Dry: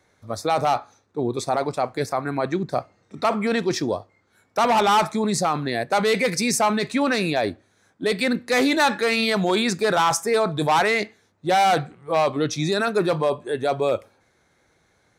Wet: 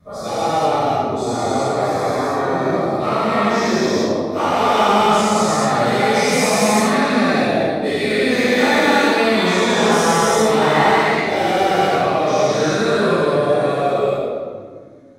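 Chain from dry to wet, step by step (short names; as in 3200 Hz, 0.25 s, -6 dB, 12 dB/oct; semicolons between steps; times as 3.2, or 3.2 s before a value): spectral dilation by 0.48 s; reverb RT60 1.8 s, pre-delay 4 ms, DRR -8.5 dB; flange 0.14 Hz, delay 4.7 ms, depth 9.8 ms, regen -44%; gain -15.5 dB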